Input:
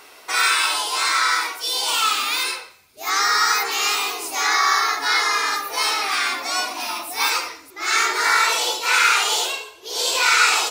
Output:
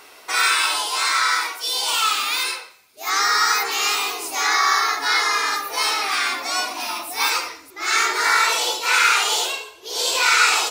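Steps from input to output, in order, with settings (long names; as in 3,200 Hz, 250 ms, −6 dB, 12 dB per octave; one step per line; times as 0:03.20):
0:00.87–0:03.13: high-pass filter 310 Hz 6 dB per octave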